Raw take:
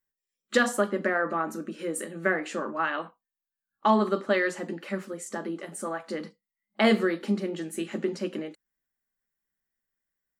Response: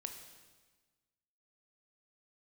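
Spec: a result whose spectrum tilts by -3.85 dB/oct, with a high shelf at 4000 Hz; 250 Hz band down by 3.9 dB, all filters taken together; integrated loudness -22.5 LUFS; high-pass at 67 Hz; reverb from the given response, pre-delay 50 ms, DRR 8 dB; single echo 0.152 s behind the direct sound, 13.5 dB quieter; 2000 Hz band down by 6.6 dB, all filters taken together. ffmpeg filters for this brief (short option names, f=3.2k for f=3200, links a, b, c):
-filter_complex "[0:a]highpass=67,equalizer=f=250:t=o:g=-5,equalizer=f=2k:t=o:g=-9,highshelf=f=4k:g=3,aecho=1:1:152:0.211,asplit=2[a][b];[1:a]atrim=start_sample=2205,adelay=50[c];[b][c]afir=irnorm=-1:irlink=0,volume=-5.5dB[d];[a][d]amix=inputs=2:normalize=0,volume=8dB"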